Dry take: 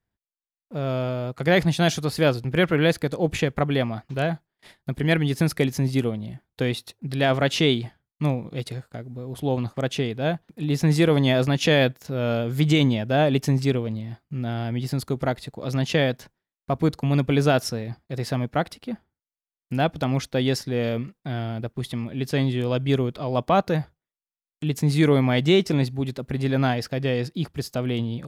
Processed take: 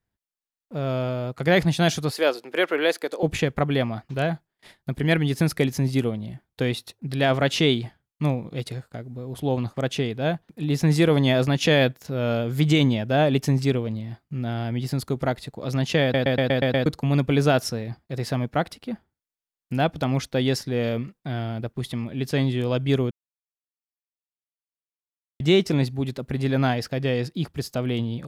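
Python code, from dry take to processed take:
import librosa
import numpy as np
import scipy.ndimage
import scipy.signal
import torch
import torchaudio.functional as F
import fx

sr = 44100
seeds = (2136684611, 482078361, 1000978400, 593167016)

y = fx.highpass(x, sr, hz=340.0, slope=24, at=(2.11, 3.23))
y = fx.edit(y, sr, fx.stutter_over(start_s=16.02, slice_s=0.12, count=7),
    fx.silence(start_s=23.11, length_s=2.29), tone=tone)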